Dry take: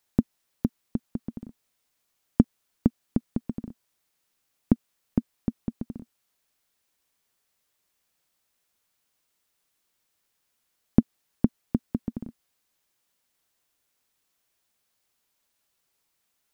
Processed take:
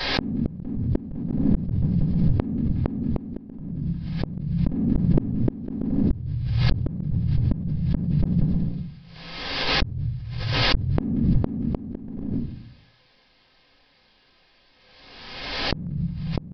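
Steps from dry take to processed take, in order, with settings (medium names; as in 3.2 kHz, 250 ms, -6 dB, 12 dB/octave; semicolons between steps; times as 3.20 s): ever faster or slower copies 193 ms, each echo -6 st, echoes 2, each echo -6 dB; in parallel at -11 dB: saturation -18 dBFS, distortion -6 dB; on the sum: band-stop 1.4 kHz, Q 8.7; simulated room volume 33 m³, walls mixed, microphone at 2.1 m; resampled via 11.025 kHz; on a send: feedback echo behind a high-pass 179 ms, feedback 45%, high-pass 1.4 kHz, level -18 dB; on the sum: compression 1.5:1, threshold -30 dBFS, peak gain reduction 11 dB; inverted gate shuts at -15 dBFS, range -40 dB; swell ahead of each attack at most 38 dB/s; trim +6.5 dB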